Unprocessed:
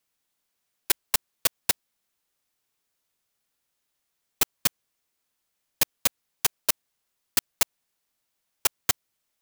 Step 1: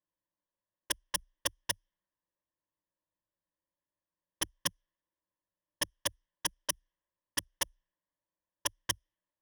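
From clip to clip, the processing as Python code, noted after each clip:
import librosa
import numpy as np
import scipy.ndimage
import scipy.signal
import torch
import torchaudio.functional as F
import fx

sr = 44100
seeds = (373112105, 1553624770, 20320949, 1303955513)

y = fx.env_lowpass(x, sr, base_hz=1100.0, full_db=-21.0)
y = fx.ripple_eq(y, sr, per_octave=1.2, db=14)
y = y * 10.0 ** (-9.0 / 20.0)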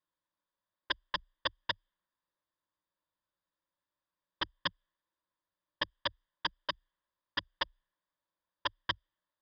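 y = scipy.signal.sosfilt(scipy.signal.cheby1(6, 9, 5000.0, 'lowpass', fs=sr, output='sos'), x)
y = y * 10.0 ** (7.5 / 20.0)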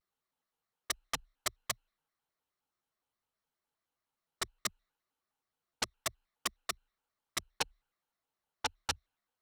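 y = fx.self_delay(x, sr, depth_ms=0.19)
y = fx.vibrato_shape(y, sr, shape='square', rate_hz=4.8, depth_cents=250.0)
y = y * 10.0 ** (1.0 / 20.0)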